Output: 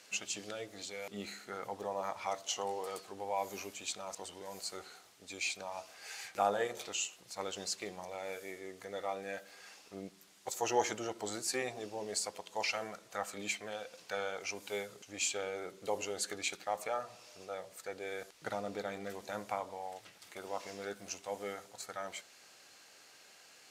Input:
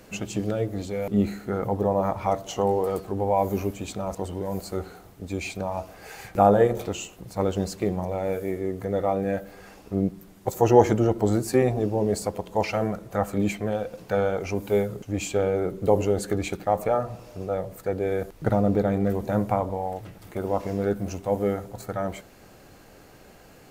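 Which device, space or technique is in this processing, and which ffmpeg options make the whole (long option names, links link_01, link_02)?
piezo pickup straight into a mixer: -af "lowpass=5500,aderivative,volume=7dB"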